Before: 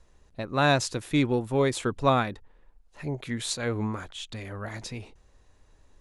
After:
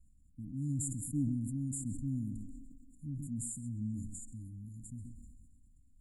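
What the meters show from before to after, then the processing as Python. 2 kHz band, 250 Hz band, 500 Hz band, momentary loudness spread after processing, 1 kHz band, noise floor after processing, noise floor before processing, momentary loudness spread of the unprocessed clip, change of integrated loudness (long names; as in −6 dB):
below −40 dB, −8.0 dB, below −35 dB, 16 LU, below −40 dB, −63 dBFS, −60 dBFS, 16 LU, −11.5 dB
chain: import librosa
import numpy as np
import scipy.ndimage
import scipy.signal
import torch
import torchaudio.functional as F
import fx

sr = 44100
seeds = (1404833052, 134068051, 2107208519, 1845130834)

p1 = fx.brickwall_bandstop(x, sr, low_hz=300.0, high_hz=6900.0)
p2 = p1 + fx.echo_wet_bandpass(p1, sr, ms=130, feedback_pct=76, hz=1400.0, wet_db=-6.0, dry=0)
p3 = fx.dynamic_eq(p2, sr, hz=620.0, q=2.0, threshold_db=-52.0, ratio=4.0, max_db=3)
p4 = p3 + 10.0 ** (-16.0 / 20.0) * np.pad(p3, (int(133 * sr / 1000.0), 0))[:len(p3)]
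p5 = fx.sustainer(p4, sr, db_per_s=28.0)
y = p5 * 10.0 ** (-8.0 / 20.0)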